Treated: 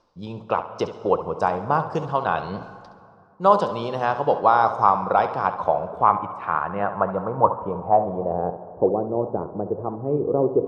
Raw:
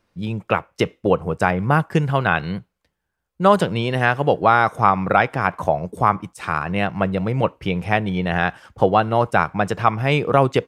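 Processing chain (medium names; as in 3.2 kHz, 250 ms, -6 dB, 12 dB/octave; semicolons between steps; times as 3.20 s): low-pass sweep 5.3 kHz -> 370 Hz, 5.14–8.87 s; reverse; upward compressor, threshold -18 dBFS; reverse; flange 1.8 Hz, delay 1.6 ms, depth 9.7 ms, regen +86%; graphic EQ 125/500/1000/2000 Hz -3/+5/+12/-11 dB; on a send: flutter echo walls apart 11.8 m, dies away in 0.34 s; on the sum: plate-style reverb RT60 2.4 s, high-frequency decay 0.5×, pre-delay 110 ms, DRR 15 dB; trim -5 dB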